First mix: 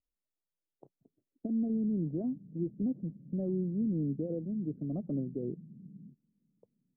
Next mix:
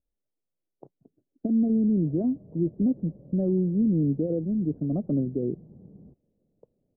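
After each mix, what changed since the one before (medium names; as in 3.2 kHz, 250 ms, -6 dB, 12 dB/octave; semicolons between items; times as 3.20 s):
speech +8.5 dB; background: remove Butterworth band-pass 190 Hz, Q 1.6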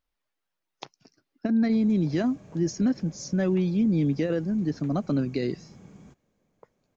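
master: remove inverse Chebyshev low-pass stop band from 3.3 kHz, stop band 80 dB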